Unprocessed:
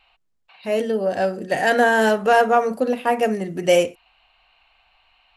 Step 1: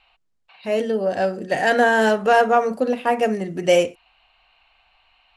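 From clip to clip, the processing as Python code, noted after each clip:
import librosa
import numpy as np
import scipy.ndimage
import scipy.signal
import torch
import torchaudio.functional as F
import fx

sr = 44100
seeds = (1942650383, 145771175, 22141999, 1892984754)

y = scipy.signal.sosfilt(scipy.signal.butter(2, 9200.0, 'lowpass', fs=sr, output='sos'), x)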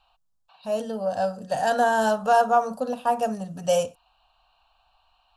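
y = fx.high_shelf(x, sr, hz=10000.0, db=4.5)
y = fx.fixed_phaser(y, sr, hz=870.0, stages=4)
y = F.gain(torch.from_numpy(y), -1.0).numpy()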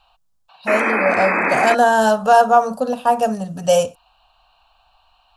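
y = fx.spec_paint(x, sr, seeds[0], shape='noise', start_s=0.67, length_s=1.08, low_hz=210.0, high_hz=2600.0, level_db=-26.0)
y = F.gain(torch.from_numpy(y), 7.0).numpy()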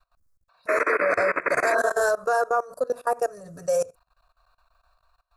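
y = fx.spec_repair(x, sr, seeds[1], start_s=1.72, length_s=0.26, low_hz=360.0, high_hz=1700.0, source='both')
y = fx.fixed_phaser(y, sr, hz=820.0, stages=6)
y = fx.level_steps(y, sr, step_db=21)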